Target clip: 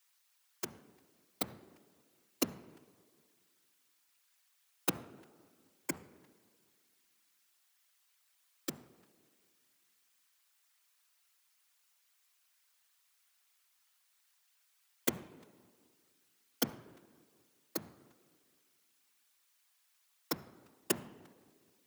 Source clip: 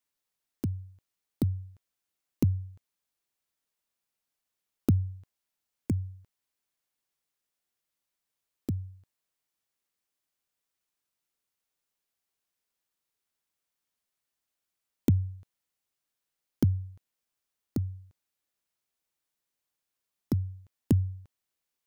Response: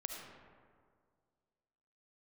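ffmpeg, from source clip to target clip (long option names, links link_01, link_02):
-filter_complex "[0:a]asplit=2[link_01][link_02];[1:a]atrim=start_sample=2205,highshelf=frequency=3800:gain=-9.5[link_03];[link_02][link_03]afir=irnorm=-1:irlink=0,volume=-10.5dB[link_04];[link_01][link_04]amix=inputs=2:normalize=0,afftfilt=real='hypot(re,im)*cos(2*PI*random(0))':imag='hypot(re,im)*sin(2*PI*random(1))':win_size=512:overlap=0.75,highpass=1100,volume=17.5dB"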